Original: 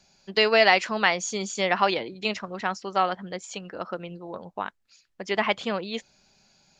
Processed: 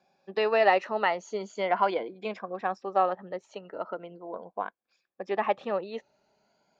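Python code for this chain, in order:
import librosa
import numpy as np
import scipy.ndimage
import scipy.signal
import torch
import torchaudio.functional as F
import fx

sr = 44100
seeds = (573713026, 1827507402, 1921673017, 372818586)

y = fx.spec_ripple(x, sr, per_octave=1.8, drift_hz=0.4, depth_db=9)
y = fx.bandpass_q(y, sr, hz=600.0, q=0.95)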